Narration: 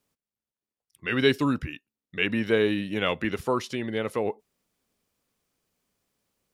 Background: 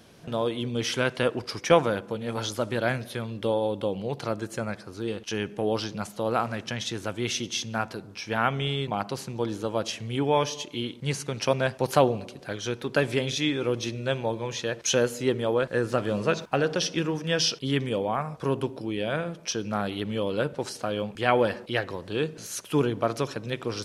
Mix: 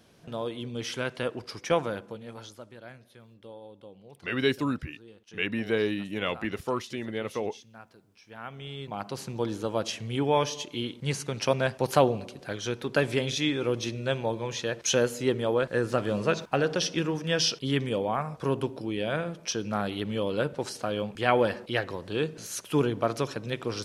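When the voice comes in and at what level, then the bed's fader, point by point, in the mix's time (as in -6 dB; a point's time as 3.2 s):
3.20 s, -4.0 dB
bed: 2.02 s -6 dB
2.76 s -20 dB
8.23 s -20 dB
9.26 s -1 dB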